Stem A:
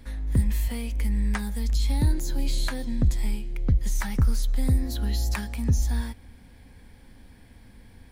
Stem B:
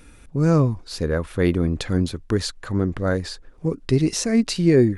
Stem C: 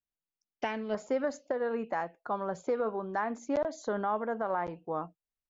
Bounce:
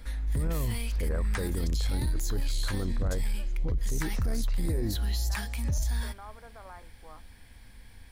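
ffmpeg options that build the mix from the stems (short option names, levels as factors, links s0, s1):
-filter_complex "[0:a]volume=1.41[s0];[1:a]alimiter=limit=0.168:level=0:latency=1,lowpass=1100,volume=1.41,asplit=2[s1][s2];[2:a]adelay=2150,volume=0.299[s3];[s2]apad=whole_len=337291[s4];[s3][s4]sidechaincompress=threshold=0.0178:ratio=8:attack=16:release=269[s5];[s0][s1][s5]amix=inputs=3:normalize=0,equalizer=f=250:w=0.36:g=-11.5,asoftclip=type=tanh:threshold=0.168,alimiter=limit=0.075:level=0:latency=1:release=18"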